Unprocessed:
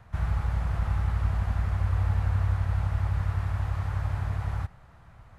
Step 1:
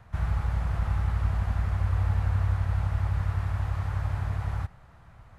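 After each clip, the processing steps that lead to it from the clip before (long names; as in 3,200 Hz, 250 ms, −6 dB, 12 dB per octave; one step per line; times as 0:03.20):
no processing that can be heard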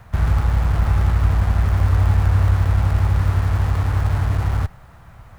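in parallel at −12 dB: comparator with hysteresis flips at −37.5 dBFS
on the sum: bit reduction 12 bits
level +8.5 dB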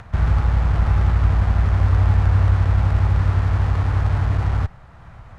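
upward compression, threshold −35 dBFS
high-frequency loss of the air 77 metres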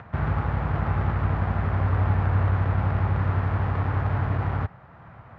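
band-pass filter 120–2,200 Hz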